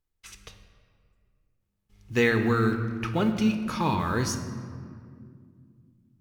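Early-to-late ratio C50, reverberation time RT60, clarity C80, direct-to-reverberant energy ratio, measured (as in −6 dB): 9.0 dB, 2.2 s, 10.0 dB, 5.5 dB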